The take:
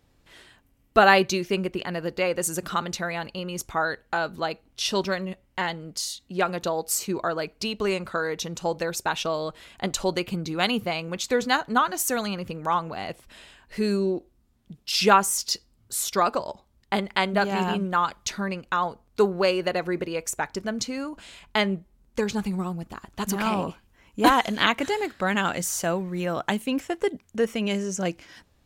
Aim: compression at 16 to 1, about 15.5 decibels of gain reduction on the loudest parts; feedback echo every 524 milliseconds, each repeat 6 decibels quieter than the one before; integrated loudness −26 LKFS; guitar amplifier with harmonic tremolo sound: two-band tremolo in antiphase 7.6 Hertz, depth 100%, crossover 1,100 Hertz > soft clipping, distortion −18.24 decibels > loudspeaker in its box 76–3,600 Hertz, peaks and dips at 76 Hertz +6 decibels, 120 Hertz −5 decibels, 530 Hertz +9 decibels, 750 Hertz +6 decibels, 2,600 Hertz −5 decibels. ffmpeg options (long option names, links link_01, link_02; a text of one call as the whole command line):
ffmpeg -i in.wav -filter_complex "[0:a]acompressor=threshold=-27dB:ratio=16,aecho=1:1:524|1048|1572|2096|2620|3144:0.501|0.251|0.125|0.0626|0.0313|0.0157,acrossover=split=1100[link_01][link_02];[link_01]aeval=exprs='val(0)*(1-1/2+1/2*cos(2*PI*7.6*n/s))':channel_layout=same[link_03];[link_02]aeval=exprs='val(0)*(1-1/2-1/2*cos(2*PI*7.6*n/s))':channel_layout=same[link_04];[link_03][link_04]amix=inputs=2:normalize=0,asoftclip=threshold=-25.5dB,highpass=76,equalizer=frequency=76:width_type=q:width=4:gain=6,equalizer=frequency=120:width_type=q:width=4:gain=-5,equalizer=frequency=530:width_type=q:width=4:gain=9,equalizer=frequency=750:width_type=q:width=4:gain=6,equalizer=frequency=2600:width_type=q:width=4:gain=-5,lowpass=frequency=3600:width=0.5412,lowpass=frequency=3600:width=1.3066,volume=9.5dB" out.wav